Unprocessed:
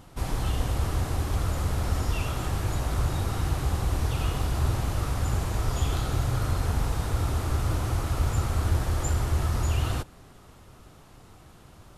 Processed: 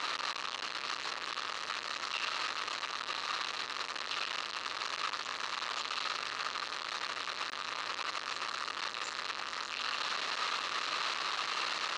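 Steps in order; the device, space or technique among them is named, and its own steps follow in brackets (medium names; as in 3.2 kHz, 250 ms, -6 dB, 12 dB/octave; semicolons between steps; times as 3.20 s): home computer beeper (one-bit comparator; cabinet simulation 720–5900 Hz, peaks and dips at 740 Hz -6 dB, 1.2 kHz +8 dB, 1.8 kHz +4 dB, 2.7 kHz +6 dB, 4.1 kHz +9 dB); trim -7.5 dB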